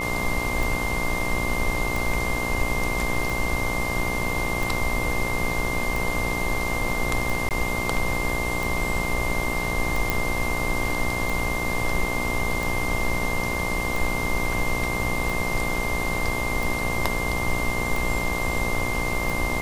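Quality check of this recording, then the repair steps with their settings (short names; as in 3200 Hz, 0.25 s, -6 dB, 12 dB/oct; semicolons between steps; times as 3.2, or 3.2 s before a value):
buzz 60 Hz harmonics 20 -30 dBFS
tick 45 rpm
tone 2100 Hz -28 dBFS
7.49–7.51 gap 18 ms
10.1 pop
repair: de-click; de-hum 60 Hz, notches 20; notch 2100 Hz, Q 30; interpolate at 7.49, 18 ms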